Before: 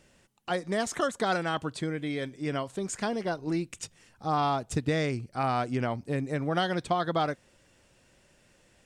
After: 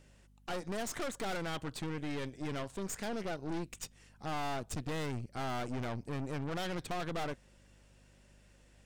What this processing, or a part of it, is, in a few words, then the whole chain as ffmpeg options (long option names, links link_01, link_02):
valve amplifier with mains hum: -af "aeval=exprs='(tanh(63.1*val(0)+0.8)-tanh(0.8))/63.1':channel_layout=same,aeval=exprs='val(0)+0.000708*(sin(2*PI*50*n/s)+sin(2*PI*2*50*n/s)/2+sin(2*PI*3*50*n/s)/3+sin(2*PI*4*50*n/s)/4+sin(2*PI*5*50*n/s)/5)':channel_layout=same,volume=1dB"